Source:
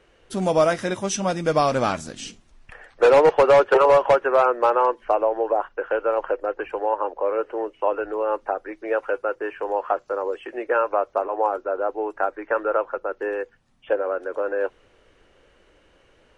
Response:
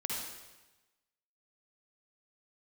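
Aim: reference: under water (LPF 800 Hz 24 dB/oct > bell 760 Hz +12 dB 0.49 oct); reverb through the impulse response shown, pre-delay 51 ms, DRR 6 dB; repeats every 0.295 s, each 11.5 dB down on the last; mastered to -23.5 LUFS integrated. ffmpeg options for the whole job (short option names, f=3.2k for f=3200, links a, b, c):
-filter_complex "[0:a]aecho=1:1:295|590|885:0.266|0.0718|0.0194,asplit=2[a][b];[1:a]atrim=start_sample=2205,adelay=51[c];[b][c]afir=irnorm=-1:irlink=0,volume=-9.5dB[d];[a][d]amix=inputs=2:normalize=0,lowpass=f=800:w=0.5412,lowpass=f=800:w=1.3066,equalizer=f=760:t=o:w=0.49:g=12,volume=-5.5dB"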